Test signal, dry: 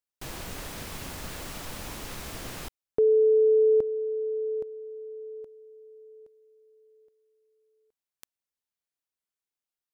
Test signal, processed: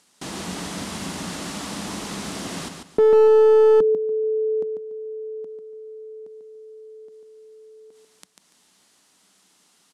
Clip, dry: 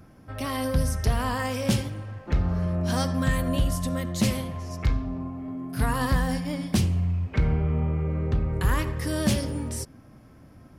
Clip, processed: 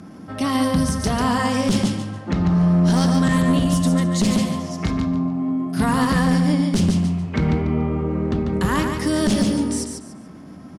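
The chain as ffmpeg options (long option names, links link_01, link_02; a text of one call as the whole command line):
ffmpeg -i in.wav -af "acompressor=mode=upward:threshold=-40dB:ratio=2.5:attack=0.24:release=109:knee=2.83:detection=peak,highpass=120,equalizer=frequency=120:width_type=q:width=4:gain=-9,equalizer=frequency=190:width_type=q:width=4:gain=9,equalizer=frequency=280:width_type=q:width=4:gain=4,equalizer=frequency=530:width_type=q:width=4:gain=-4,equalizer=frequency=1600:width_type=q:width=4:gain=-3,equalizer=frequency=2400:width_type=q:width=4:gain=-4,lowpass=frequency=10000:width=0.5412,lowpass=frequency=10000:width=1.3066,aecho=1:1:144|288|432:0.501|0.13|0.0339,aeval=exprs='clip(val(0),-1,0.0944)':channel_layout=same,alimiter=level_in=15dB:limit=-1dB:release=50:level=0:latency=1,volume=-7.5dB" out.wav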